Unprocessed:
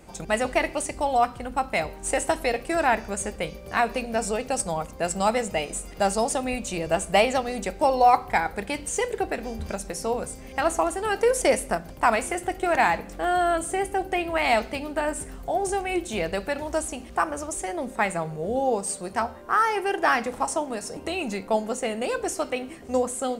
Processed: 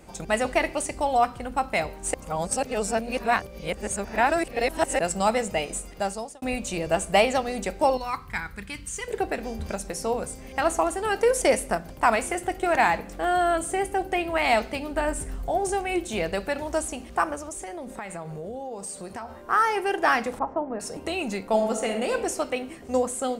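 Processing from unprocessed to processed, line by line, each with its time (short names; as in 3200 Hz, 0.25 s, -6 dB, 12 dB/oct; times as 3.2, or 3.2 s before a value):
2.14–4.99 reverse
5.76–6.42 fade out
7.97–9.08 EQ curve 140 Hz 0 dB, 750 Hz -21 dB, 1100 Hz -4 dB
14.91–15.59 low shelf 72 Hz +11 dB
17.35–19.43 compressor, threshold -32 dBFS
20.39–20.8 Bessel low-pass 1200 Hz, order 4
21.44–22.11 reverb throw, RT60 1 s, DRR 5 dB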